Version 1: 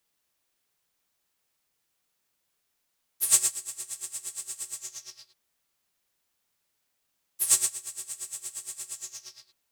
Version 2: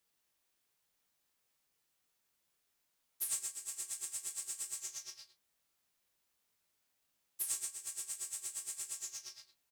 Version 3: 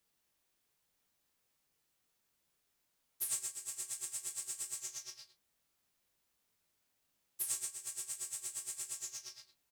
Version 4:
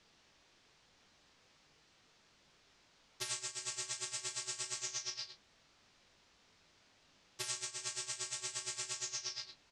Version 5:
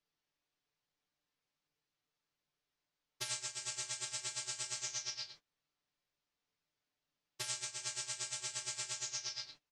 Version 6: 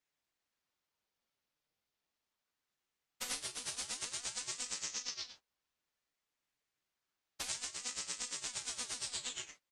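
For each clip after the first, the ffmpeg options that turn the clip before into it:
-filter_complex "[0:a]asplit=2[a][b];[b]aecho=0:1:20|38:0.398|0.168[c];[a][c]amix=inputs=2:normalize=0,acompressor=threshold=-32dB:ratio=5,volume=-4dB"
-af "lowshelf=f=440:g=4.5"
-af "lowpass=f=5.8k:w=0.5412,lowpass=f=5.8k:w=1.3066,acompressor=threshold=-54dB:ratio=6,volume=16.5dB"
-af "agate=range=-22dB:threshold=-56dB:ratio=16:detection=peak,aecho=1:1:6.8:0.51,volume=-1dB"
-af "aeval=exprs='val(0)*sin(2*PI*1200*n/s+1200*0.75/0.31*sin(2*PI*0.31*n/s))':c=same,volume=3dB"

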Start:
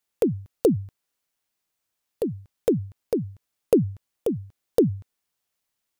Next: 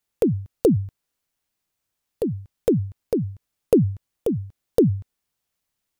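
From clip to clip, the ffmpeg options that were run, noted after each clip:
-af "lowshelf=f=200:g=8"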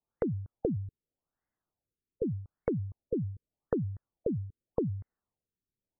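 -af "acompressor=threshold=-24dB:ratio=12,afftfilt=real='re*lt(b*sr/1024,440*pow(2200/440,0.5+0.5*sin(2*PI*0.84*pts/sr)))':imag='im*lt(b*sr/1024,440*pow(2200/440,0.5+0.5*sin(2*PI*0.84*pts/sr)))':win_size=1024:overlap=0.75,volume=-3.5dB"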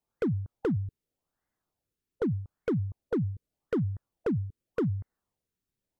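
-af "volume=28dB,asoftclip=hard,volume=-28dB,volume=4.5dB"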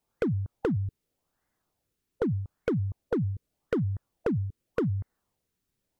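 -af "acompressor=threshold=-31dB:ratio=6,volume=6dB"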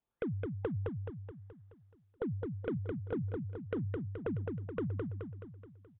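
-filter_complex "[0:a]asplit=2[a][b];[b]aecho=0:1:213|426|639|852|1065|1278|1491:0.668|0.348|0.181|0.094|0.0489|0.0254|0.0132[c];[a][c]amix=inputs=2:normalize=0,aresample=8000,aresample=44100,volume=-9dB"

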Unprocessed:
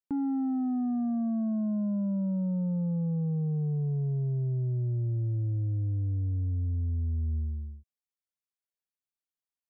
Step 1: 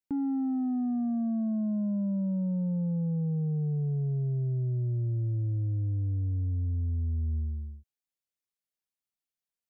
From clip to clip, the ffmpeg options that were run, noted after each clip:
-af "equalizer=f=1.1k:w=1.5:g=-5"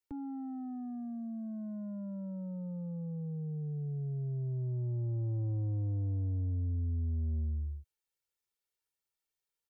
-filter_complex "[0:a]aecho=1:1:2.2:0.65,acrossover=split=110[a][b];[b]alimiter=level_in=11.5dB:limit=-24dB:level=0:latency=1,volume=-11.5dB[c];[a][c]amix=inputs=2:normalize=0,asoftclip=type=tanh:threshold=-30.5dB"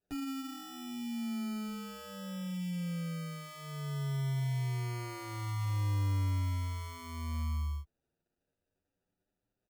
-filter_complex "[0:a]asplit=2[a][b];[b]alimiter=level_in=15.5dB:limit=-24dB:level=0:latency=1,volume=-15.5dB,volume=-0.5dB[c];[a][c]amix=inputs=2:normalize=0,acrusher=samples=41:mix=1:aa=0.000001,asplit=2[d][e];[e]adelay=7.8,afreqshift=0.33[f];[d][f]amix=inputs=2:normalize=1"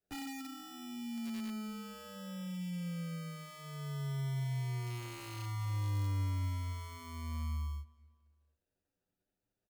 -filter_complex "[0:a]asplit=2[a][b];[b]adelay=244,lowpass=f=4.4k:p=1,volume=-23.5dB,asplit=2[c][d];[d]adelay=244,lowpass=f=4.4k:p=1,volume=0.48,asplit=2[e][f];[f]adelay=244,lowpass=f=4.4k:p=1,volume=0.48[g];[a][c][e][g]amix=inputs=4:normalize=0,acrossover=split=260|1700|4700[h][i][j][k];[i]aeval=exprs='(mod(94.4*val(0)+1,2)-1)/94.4':c=same[l];[h][l][j][k]amix=inputs=4:normalize=0,volume=-3dB"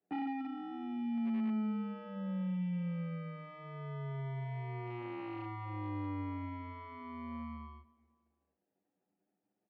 -af "highpass=190,equalizer=f=200:t=q:w=4:g=9,equalizer=f=320:t=q:w=4:g=9,equalizer=f=780:t=q:w=4:g=8,equalizer=f=1.5k:t=q:w=4:g=-6,lowpass=f=2.3k:w=0.5412,lowpass=f=2.3k:w=1.3066,volume=2dB"

